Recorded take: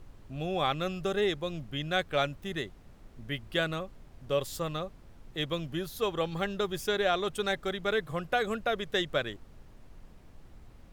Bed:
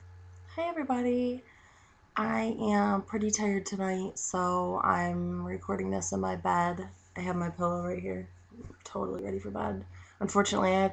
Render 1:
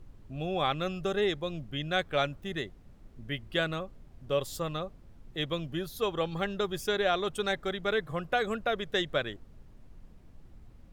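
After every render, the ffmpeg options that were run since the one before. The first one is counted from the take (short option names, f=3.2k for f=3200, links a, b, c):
-af "afftdn=nr=6:nf=-54"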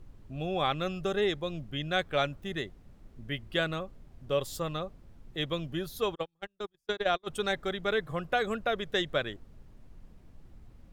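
-filter_complex "[0:a]asplit=3[a][b][c];[a]afade=t=out:st=6.14:d=0.02[d];[b]agate=range=-43dB:threshold=-28dB:ratio=16:release=100:detection=peak,afade=t=in:st=6.14:d=0.02,afade=t=out:st=7.26:d=0.02[e];[c]afade=t=in:st=7.26:d=0.02[f];[d][e][f]amix=inputs=3:normalize=0"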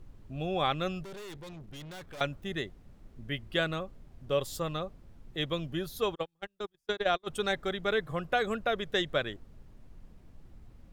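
-filter_complex "[0:a]asettb=1/sr,asplit=3[a][b][c];[a]atrim=end=1.034[d];[b]atrim=start=1.03:end=2.21,asetpts=PTS-STARTPTS,afade=t=in:d=0.004:c=qsin,afade=t=out:st=1.176:d=0.004:c=qsin,aeval=exprs='(tanh(141*val(0)+0.3)-tanh(0.3))/141':c=same[e];[c]atrim=start=2.206[f];[d][e]acrossfade=d=0.004:c1=hsin:c2=qsin[g];[g][f]acrossfade=d=0.004:c1=qsin:c2=hsin"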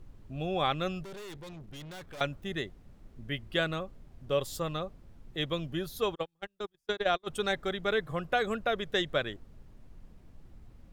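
-af anull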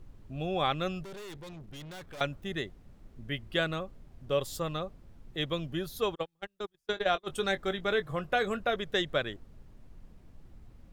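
-filter_complex "[0:a]asettb=1/sr,asplit=3[a][b][c];[a]atrim=end=6.914[d];[b]atrim=start=6.91:end=8.76,asetpts=PTS-STARTPTS,afade=t=in:d=0.004:c=qsin,afade=t=out:st=1.846:d=0.004:c=qsin,asplit=2[e][f];[f]adelay=21,volume=-12dB[g];[e][g]amix=inputs=2:normalize=0,atrim=end_sample=81585[h];[c]atrim=start=8.756[i];[d][h]acrossfade=d=0.004:c1=hsin:c2=qsin[j];[j][i]acrossfade=d=0.004:c1=qsin:c2=hsin"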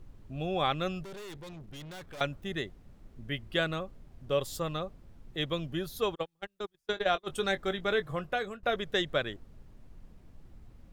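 -filter_complex "[0:a]asplit=2[a][b];[a]atrim=end=8.63,asetpts=PTS-STARTPTS,afade=t=out:st=7.98:d=0.65:c=qsin:silence=0.125893[c];[b]atrim=start=8.63,asetpts=PTS-STARTPTS,afade=t=in:d=0.004:c=hsin:silence=0.125893[d];[c][d]concat=n=2:v=0:a=1"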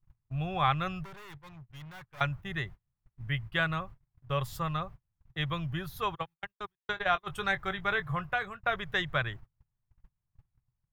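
-af "agate=range=-33dB:threshold=-44dB:ratio=16:detection=peak,equalizer=f=125:t=o:w=1:g=12,equalizer=f=250:t=o:w=1:g=-11,equalizer=f=500:t=o:w=1:g=-8,equalizer=f=1k:t=o:w=1:g=7,equalizer=f=2k:t=o:w=1:g=4,equalizer=f=4k:t=o:w=1:g=-4,equalizer=f=8k:t=o:w=1:g=-7"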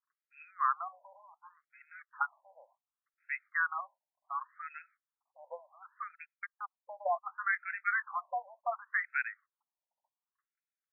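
-af "afftfilt=real='re*between(b*sr/1024,700*pow(1900/700,0.5+0.5*sin(2*PI*0.68*pts/sr))/1.41,700*pow(1900/700,0.5+0.5*sin(2*PI*0.68*pts/sr))*1.41)':imag='im*between(b*sr/1024,700*pow(1900/700,0.5+0.5*sin(2*PI*0.68*pts/sr))/1.41,700*pow(1900/700,0.5+0.5*sin(2*PI*0.68*pts/sr))*1.41)':win_size=1024:overlap=0.75"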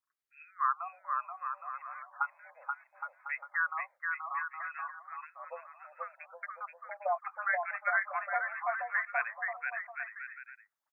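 -af "aecho=1:1:480|816|1051|1216|1331:0.631|0.398|0.251|0.158|0.1"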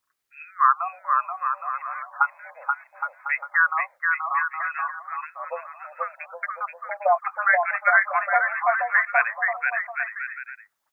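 -af "volume=12dB"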